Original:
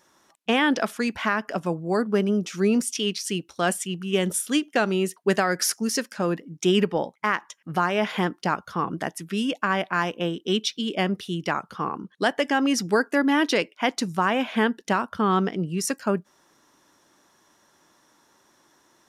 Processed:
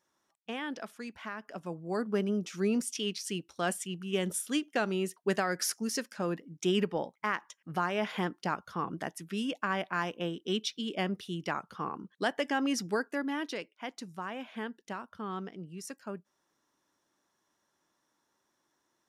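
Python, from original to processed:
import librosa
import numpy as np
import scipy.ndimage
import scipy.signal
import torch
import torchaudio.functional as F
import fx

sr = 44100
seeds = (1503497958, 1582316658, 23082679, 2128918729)

y = fx.gain(x, sr, db=fx.line((1.35, -16.5), (2.08, -8.0), (12.75, -8.0), (13.67, -16.5)))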